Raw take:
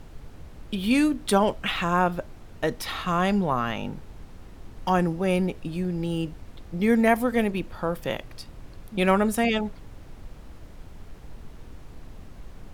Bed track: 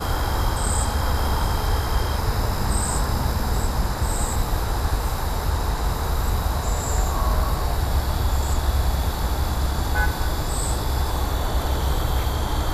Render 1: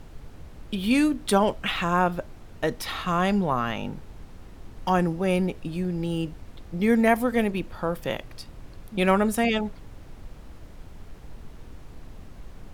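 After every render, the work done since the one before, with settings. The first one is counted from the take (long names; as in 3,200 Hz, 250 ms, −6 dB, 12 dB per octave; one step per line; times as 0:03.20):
no processing that can be heard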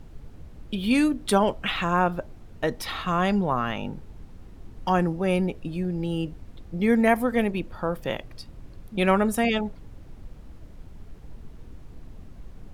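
broadband denoise 6 dB, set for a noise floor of −46 dBFS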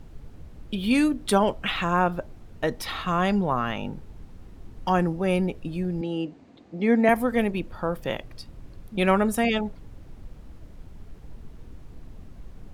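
0:06.01–0:07.09: loudspeaker in its box 220–6,800 Hz, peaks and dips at 270 Hz +7 dB, 710 Hz +4 dB, 1,400 Hz −3 dB, 3,300 Hz −3 dB, 5,500 Hz −5 dB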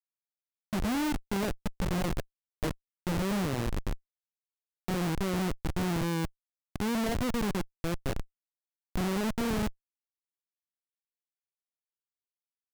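running median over 41 samples
comparator with hysteresis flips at −28.5 dBFS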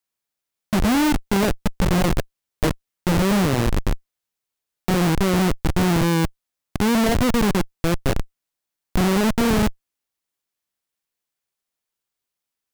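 level +11.5 dB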